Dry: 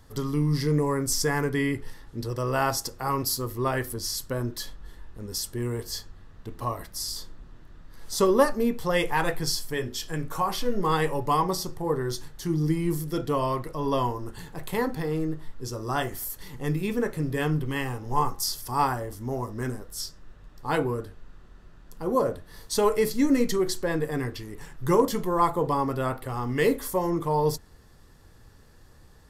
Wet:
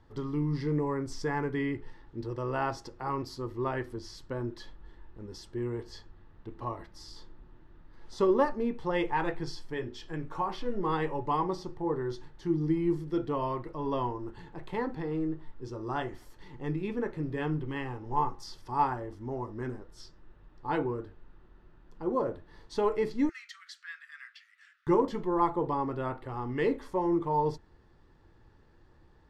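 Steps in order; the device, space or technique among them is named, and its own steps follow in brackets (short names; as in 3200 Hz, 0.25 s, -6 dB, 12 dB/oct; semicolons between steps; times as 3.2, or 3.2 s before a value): 23.29–24.87 steep high-pass 1300 Hz 72 dB/oct; inside a cardboard box (LPF 3200 Hz 12 dB/oct; small resonant body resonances 340/880 Hz, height 8 dB, ringing for 45 ms); gain -7 dB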